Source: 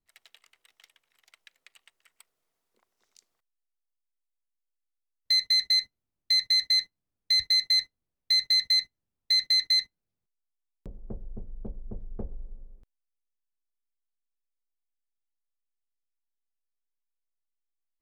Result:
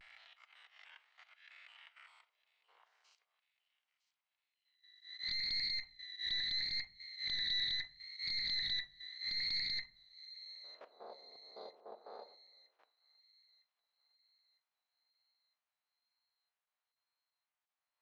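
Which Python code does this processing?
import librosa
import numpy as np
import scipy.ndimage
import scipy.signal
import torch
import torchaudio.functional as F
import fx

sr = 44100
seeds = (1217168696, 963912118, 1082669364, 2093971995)

p1 = fx.spec_swells(x, sr, rise_s=0.68)
p2 = scipy.signal.sosfilt(scipy.signal.butter(4, 710.0, 'highpass', fs=sr, output='sos'), p1)
p3 = fx.high_shelf(p2, sr, hz=2400.0, db=5.0)
p4 = fx.level_steps(p3, sr, step_db=15)
p5 = fx.auto_swell(p4, sr, attack_ms=122.0)
p6 = fx.vibrato(p5, sr, rate_hz=0.76, depth_cents=61.0)
p7 = fx.fold_sine(p6, sr, drive_db=5, ceiling_db=-20.5)
p8 = fx.spacing_loss(p7, sr, db_at_10k=44)
p9 = p8 + fx.echo_wet_highpass(p8, sr, ms=957, feedback_pct=50, hz=3200.0, wet_db=-14.5, dry=0)
p10 = fx.room_shoebox(p9, sr, seeds[0], volume_m3=380.0, walls='furnished', distance_m=0.46)
p11 = fx.doppler_dist(p10, sr, depth_ms=0.19)
y = F.gain(torch.from_numpy(p11), 3.5).numpy()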